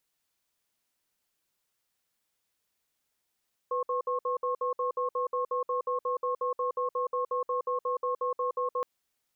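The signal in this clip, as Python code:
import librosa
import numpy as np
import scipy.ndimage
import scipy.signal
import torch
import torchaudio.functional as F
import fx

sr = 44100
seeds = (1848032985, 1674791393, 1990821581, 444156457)

y = fx.cadence(sr, length_s=5.12, low_hz=498.0, high_hz=1080.0, on_s=0.12, off_s=0.06, level_db=-29.5)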